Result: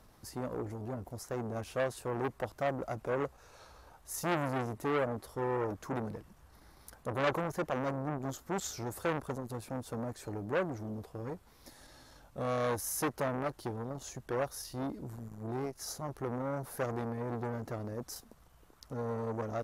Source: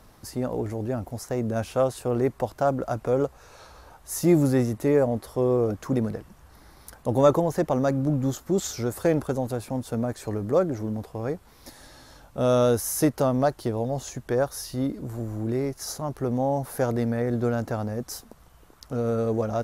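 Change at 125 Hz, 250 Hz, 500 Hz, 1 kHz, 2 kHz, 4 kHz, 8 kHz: -11.5 dB, -13.0 dB, -11.5 dB, -6.5 dB, -2.0 dB, -7.0 dB, -8.0 dB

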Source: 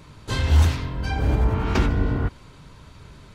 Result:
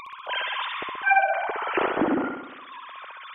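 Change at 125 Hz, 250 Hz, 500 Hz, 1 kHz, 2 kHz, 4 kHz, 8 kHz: -28.5 dB, -1.5 dB, +2.5 dB, +8.5 dB, +8.5 dB, +1.5 dB, under -30 dB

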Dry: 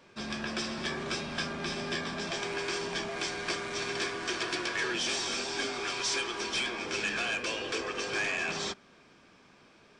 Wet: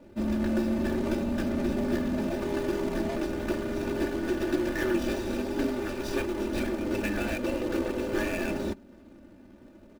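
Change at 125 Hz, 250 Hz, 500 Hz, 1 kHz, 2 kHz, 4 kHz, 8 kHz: +8.5 dB, +12.5 dB, +7.0 dB, -1.5 dB, -5.0 dB, -10.5 dB, -9.0 dB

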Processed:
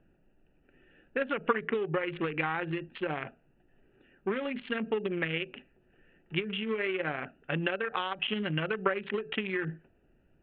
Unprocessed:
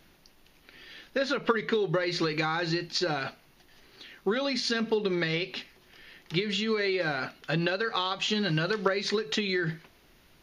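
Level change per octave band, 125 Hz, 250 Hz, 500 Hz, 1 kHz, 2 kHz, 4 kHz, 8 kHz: -4.0 dB, -4.0 dB, -3.5 dB, -2.5 dB, -2.5 dB, -8.5 dB, under -35 dB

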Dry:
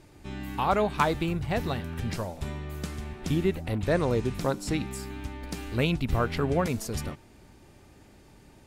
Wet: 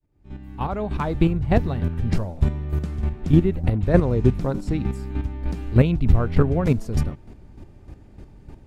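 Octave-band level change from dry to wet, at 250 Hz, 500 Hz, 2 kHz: +7.5 dB, +3.5 dB, -2.0 dB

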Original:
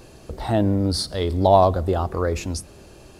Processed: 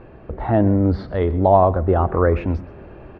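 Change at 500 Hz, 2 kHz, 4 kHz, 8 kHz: +2.5 dB, +3.5 dB, under -15 dB, under -35 dB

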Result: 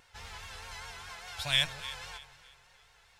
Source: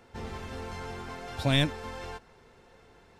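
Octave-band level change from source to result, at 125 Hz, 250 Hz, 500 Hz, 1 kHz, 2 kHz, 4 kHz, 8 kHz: -14.0 dB, -20.5 dB, -13.5 dB, -6.0 dB, +0.5 dB, +3.0 dB, +4.0 dB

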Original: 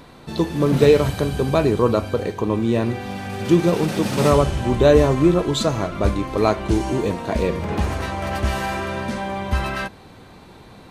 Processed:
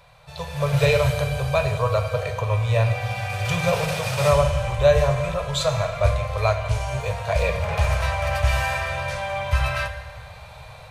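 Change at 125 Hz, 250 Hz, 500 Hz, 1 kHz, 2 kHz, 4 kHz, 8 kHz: +0.5 dB, -14.0 dB, -3.5 dB, -1.0 dB, +3.0 dB, 0.0 dB, 0.0 dB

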